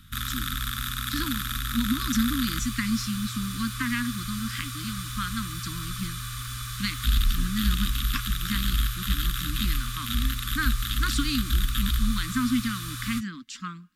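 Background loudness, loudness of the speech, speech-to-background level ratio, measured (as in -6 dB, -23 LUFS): -30.0 LUFS, -32.0 LUFS, -2.0 dB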